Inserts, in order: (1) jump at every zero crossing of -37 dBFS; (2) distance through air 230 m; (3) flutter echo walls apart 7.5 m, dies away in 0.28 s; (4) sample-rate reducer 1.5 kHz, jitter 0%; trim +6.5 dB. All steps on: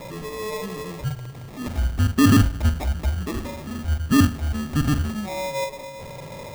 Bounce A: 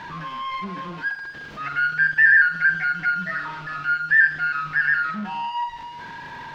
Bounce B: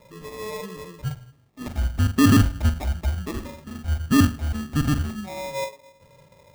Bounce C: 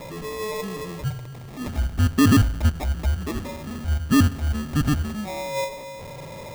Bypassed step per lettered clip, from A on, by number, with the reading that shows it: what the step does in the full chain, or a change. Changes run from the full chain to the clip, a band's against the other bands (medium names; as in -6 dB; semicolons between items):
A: 4, 2 kHz band +28.5 dB; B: 1, distortion -16 dB; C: 3, crest factor change -1.5 dB